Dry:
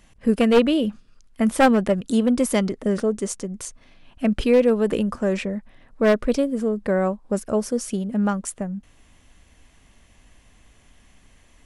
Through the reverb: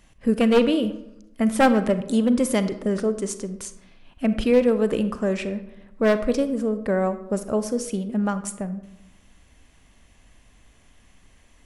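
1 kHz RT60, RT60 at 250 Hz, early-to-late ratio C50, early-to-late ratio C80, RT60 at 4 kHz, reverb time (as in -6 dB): 0.85 s, 0.95 s, 12.5 dB, 15.0 dB, 0.50 s, 0.90 s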